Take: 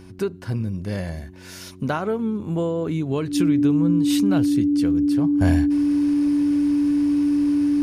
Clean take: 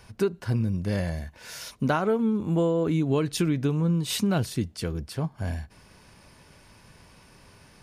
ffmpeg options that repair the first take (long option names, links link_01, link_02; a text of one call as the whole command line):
ffmpeg -i in.wav -af "bandreject=frequency=92.3:width_type=h:width=4,bandreject=frequency=184.6:width_type=h:width=4,bandreject=frequency=276.9:width_type=h:width=4,bandreject=frequency=369.2:width_type=h:width=4,bandreject=frequency=290:width=30,asetnsamples=nb_out_samples=441:pad=0,asendcmd='5.41 volume volume -10.5dB',volume=0dB" out.wav